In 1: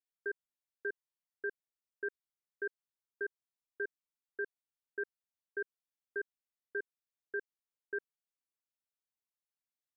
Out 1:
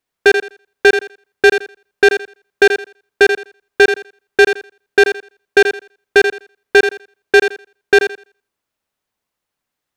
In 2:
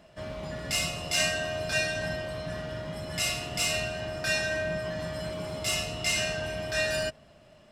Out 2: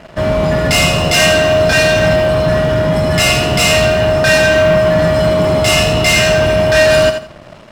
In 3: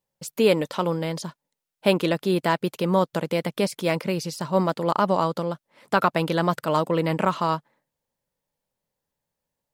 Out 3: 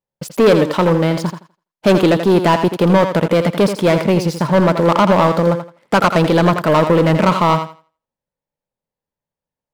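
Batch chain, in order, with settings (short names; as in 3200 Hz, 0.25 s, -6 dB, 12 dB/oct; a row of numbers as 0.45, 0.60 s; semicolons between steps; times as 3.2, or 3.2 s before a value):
high shelf 3100 Hz -10.5 dB; sample leveller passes 3; thinning echo 83 ms, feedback 22%, high-pass 180 Hz, level -8 dB; normalise peaks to -3 dBFS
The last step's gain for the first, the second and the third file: +26.5, +13.0, +2.5 dB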